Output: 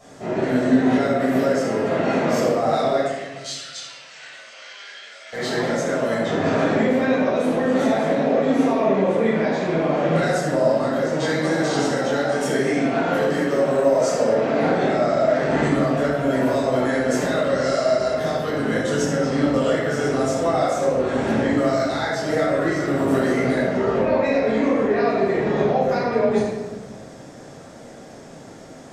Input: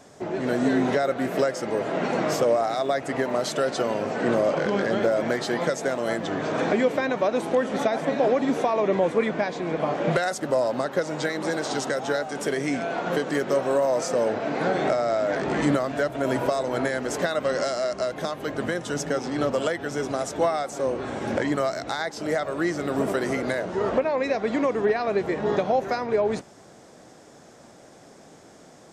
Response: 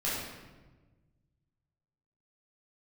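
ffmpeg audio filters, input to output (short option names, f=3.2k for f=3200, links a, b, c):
-filter_complex "[0:a]alimiter=limit=-19dB:level=0:latency=1:release=200,asettb=1/sr,asplit=3[a][b][c];[a]atrim=end=2.974[d];[b]atrim=start=2.97:end=5.33,asetpts=PTS-STARTPTS,afade=t=in:d=0.004:c=qsin,afade=t=out:st=2.356:d=0.004:c=qsin,asuperpass=centerf=4700:order=4:qfactor=0.81[e];[c]atrim=start=5.326[f];[d][e]acrossfade=d=0.004:c1=hsin:c2=qsin[g];[g][f]acrossfade=d=0.004:c1=qsin:c2=hsin[h];[1:a]atrim=start_sample=2205[i];[h][i]afir=irnorm=-1:irlink=0"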